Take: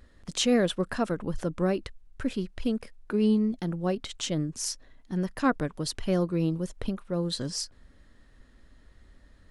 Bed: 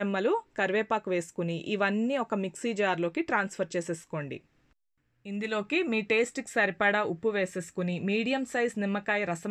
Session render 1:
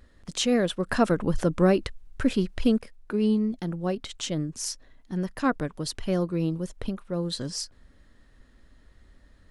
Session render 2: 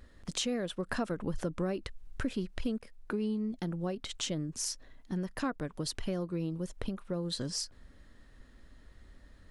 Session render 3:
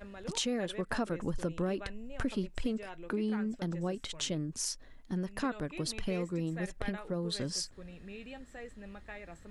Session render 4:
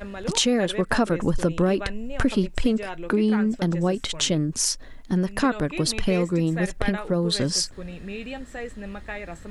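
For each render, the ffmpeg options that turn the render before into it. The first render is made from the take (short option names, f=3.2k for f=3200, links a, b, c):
-filter_complex "[0:a]asettb=1/sr,asplit=3[a][b][c];[a]atrim=end=0.884[d];[b]atrim=start=0.88:end=2.79,asetpts=PTS-STARTPTS,afade=t=in:d=0.004:c=qsin,afade=t=out:st=1.906:d=0.004:c=qsin,acontrast=62[e];[c]atrim=start=2.786[f];[d][e]acrossfade=d=0.004:c1=hsin:c2=qsin[g];[g][f]acrossfade=d=0.004:c1=qsin:c2=hsin"
-af "acompressor=threshold=-32dB:ratio=4"
-filter_complex "[1:a]volume=-18.5dB[a];[0:a][a]amix=inputs=2:normalize=0"
-af "volume=12dB"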